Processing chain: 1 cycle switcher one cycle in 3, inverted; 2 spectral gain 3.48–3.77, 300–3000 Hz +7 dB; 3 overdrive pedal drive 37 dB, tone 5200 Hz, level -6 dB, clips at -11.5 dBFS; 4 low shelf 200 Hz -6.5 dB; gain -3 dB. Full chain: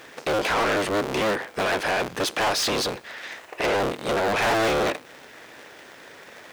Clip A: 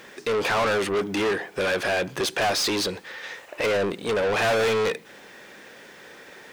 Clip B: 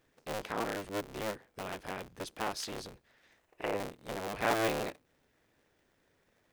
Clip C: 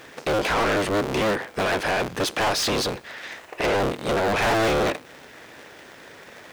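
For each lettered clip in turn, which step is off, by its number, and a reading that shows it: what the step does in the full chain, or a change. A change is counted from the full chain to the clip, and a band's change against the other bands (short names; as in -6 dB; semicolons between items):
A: 1, momentary loudness spread change -6 LU; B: 3, crest factor change +13.0 dB; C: 4, 125 Hz band +4.5 dB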